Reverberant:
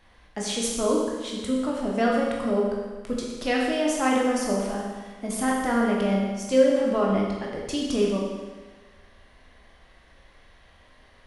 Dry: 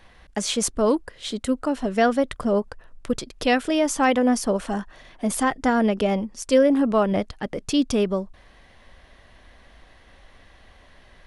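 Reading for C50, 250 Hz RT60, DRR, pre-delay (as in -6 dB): 0.5 dB, 1.4 s, -3.0 dB, 17 ms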